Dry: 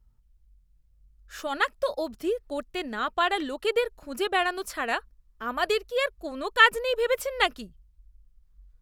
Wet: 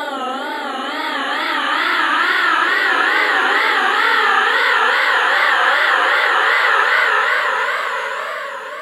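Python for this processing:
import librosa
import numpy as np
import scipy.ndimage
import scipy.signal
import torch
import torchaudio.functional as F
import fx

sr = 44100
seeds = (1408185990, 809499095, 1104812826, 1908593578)

p1 = fx.spec_dilate(x, sr, span_ms=120)
p2 = scipy.signal.sosfilt(scipy.signal.butter(4, 120.0, 'highpass', fs=sr, output='sos'), p1)
p3 = fx.paulstretch(p2, sr, seeds[0], factor=45.0, window_s=0.05, from_s=1.53)
p4 = fx.wow_flutter(p3, sr, seeds[1], rate_hz=2.1, depth_cents=130.0)
p5 = p4 + fx.echo_single(p4, sr, ms=1042, db=-12.0, dry=0)
y = p5 * 10.0 ** (2.0 / 20.0)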